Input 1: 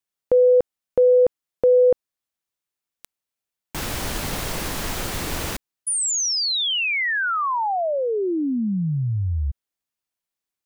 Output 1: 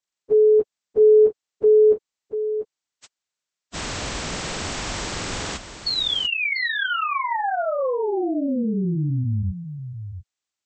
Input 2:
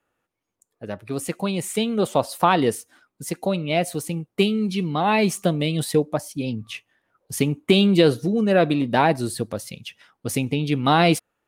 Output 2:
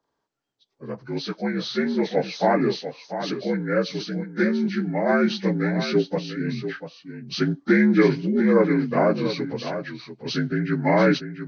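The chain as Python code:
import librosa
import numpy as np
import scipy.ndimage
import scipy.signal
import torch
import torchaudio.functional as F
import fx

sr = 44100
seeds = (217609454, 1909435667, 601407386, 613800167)

y = fx.partial_stretch(x, sr, pct=78)
y = y + 10.0 ** (-10.0 / 20.0) * np.pad(y, (int(692 * sr / 1000.0), 0))[:len(y)]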